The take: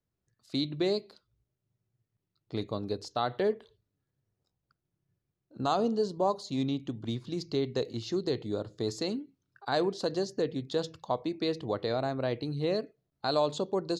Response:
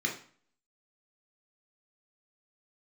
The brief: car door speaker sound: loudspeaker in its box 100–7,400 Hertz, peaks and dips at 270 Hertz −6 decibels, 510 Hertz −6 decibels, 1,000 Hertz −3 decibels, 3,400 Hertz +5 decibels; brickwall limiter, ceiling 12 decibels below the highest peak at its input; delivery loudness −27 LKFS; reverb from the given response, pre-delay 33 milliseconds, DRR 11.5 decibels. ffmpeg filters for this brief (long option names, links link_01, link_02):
-filter_complex "[0:a]alimiter=level_in=2.5dB:limit=-24dB:level=0:latency=1,volume=-2.5dB,asplit=2[link_01][link_02];[1:a]atrim=start_sample=2205,adelay=33[link_03];[link_02][link_03]afir=irnorm=-1:irlink=0,volume=-18dB[link_04];[link_01][link_04]amix=inputs=2:normalize=0,highpass=100,equalizer=frequency=270:width_type=q:width=4:gain=-6,equalizer=frequency=510:width_type=q:width=4:gain=-6,equalizer=frequency=1000:width_type=q:width=4:gain=-3,equalizer=frequency=3400:width_type=q:width=4:gain=5,lowpass=frequency=7400:width=0.5412,lowpass=frequency=7400:width=1.3066,volume=12dB"